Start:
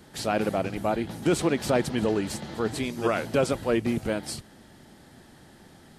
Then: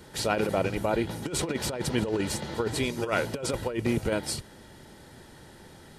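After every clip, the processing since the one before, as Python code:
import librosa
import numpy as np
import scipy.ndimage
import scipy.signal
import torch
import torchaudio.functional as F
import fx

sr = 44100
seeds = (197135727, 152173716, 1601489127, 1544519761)

y = x + 0.34 * np.pad(x, (int(2.1 * sr / 1000.0), 0))[:len(x)]
y = fx.over_compress(y, sr, threshold_db=-26.0, ratio=-0.5)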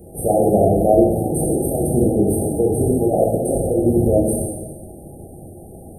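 y = fx.brickwall_bandstop(x, sr, low_hz=830.0, high_hz=8400.0)
y = fx.rev_plate(y, sr, seeds[0], rt60_s=1.4, hf_ratio=0.85, predelay_ms=0, drr_db=-5.0)
y = F.gain(torch.from_numpy(y), 7.0).numpy()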